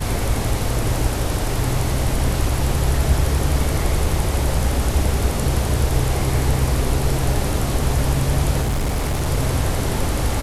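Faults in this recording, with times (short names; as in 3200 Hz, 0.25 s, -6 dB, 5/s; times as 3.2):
8.61–9.27 clipped -17 dBFS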